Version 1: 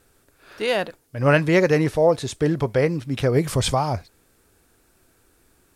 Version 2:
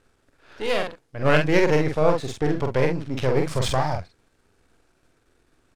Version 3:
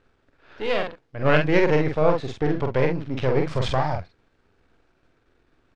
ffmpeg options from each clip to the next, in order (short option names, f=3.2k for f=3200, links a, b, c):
-filter_complex "[0:a]aeval=exprs='if(lt(val(0),0),0.251*val(0),val(0))':c=same,adynamicsmooth=sensitivity=4.5:basefreq=6.4k,asplit=2[a][b];[b]adelay=46,volume=-4dB[c];[a][c]amix=inputs=2:normalize=0"
-af "lowpass=3.9k"